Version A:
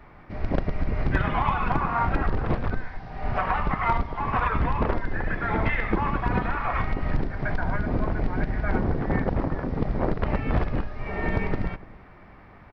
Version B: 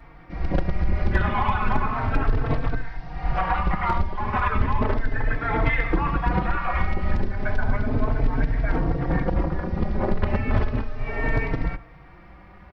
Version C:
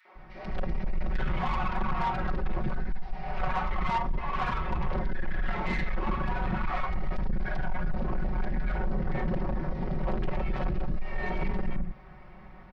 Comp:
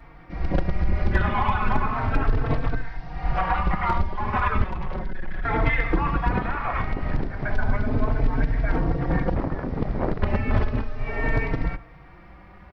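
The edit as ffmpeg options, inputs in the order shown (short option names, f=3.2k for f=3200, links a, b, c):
-filter_complex "[0:a]asplit=2[a][b];[1:a]asplit=4[c][d][e][f];[c]atrim=end=4.642[g];[2:a]atrim=start=4.638:end=5.452[h];[d]atrim=start=5.448:end=6.312[i];[a]atrim=start=6.308:end=7.522[j];[e]atrim=start=7.518:end=9.352[k];[b]atrim=start=9.348:end=10.212[l];[f]atrim=start=10.208[m];[g][h]acrossfade=d=0.004:c1=hsin:c2=hsin[n];[n][i]acrossfade=d=0.004:c1=hsin:c2=hsin[o];[o][j]acrossfade=d=0.004:c1=hsin:c2=hsin[p];[p][k]acrossfade=d=0.004:c1=hsin:c2=hsin[q];[q][l]acrossfade=d=0.004:c1=hsin:c2=hsin[r];[r][m]acrossfade=d=0.004:c1=hsin:c2=hsin"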